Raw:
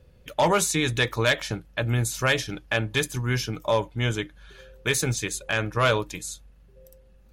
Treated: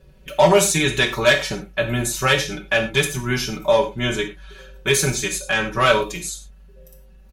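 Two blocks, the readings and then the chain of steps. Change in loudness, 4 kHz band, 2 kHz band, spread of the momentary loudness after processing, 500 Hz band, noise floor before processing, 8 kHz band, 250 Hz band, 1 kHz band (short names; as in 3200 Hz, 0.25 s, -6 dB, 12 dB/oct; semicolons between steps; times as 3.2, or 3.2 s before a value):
+6.0 dB, +6.5 dB, +6.0 dB, 11 LU, +7.5 dB, -54 dBFS, +6.0 dB, +5.0 dB, +5.5 dB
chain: comb 5.3 ms, depth 96%; non-linear reverb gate 0.14 s falling, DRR 3.5 dB; gain +1.5 dB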